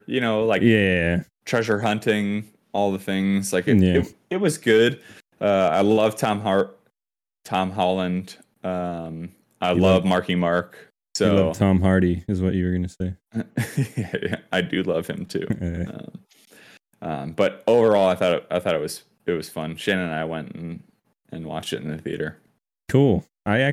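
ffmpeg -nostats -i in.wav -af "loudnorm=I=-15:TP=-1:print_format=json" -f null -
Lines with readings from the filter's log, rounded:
"input_i" : "-22.5",
"input_tp" : "-4.2",
"input_lra" : "6.8",
"input_thresh" : "-33.2",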